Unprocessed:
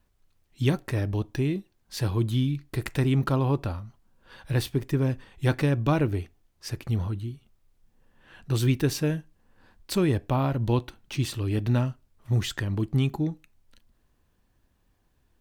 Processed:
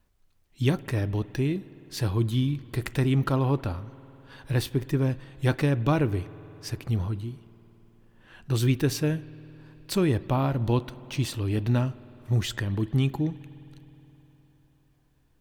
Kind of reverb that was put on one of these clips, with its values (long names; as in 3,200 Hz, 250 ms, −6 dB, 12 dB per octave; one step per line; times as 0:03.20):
spring reverb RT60 3.9 s, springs 52 ms, chirp 55 ms, DRR 18 dB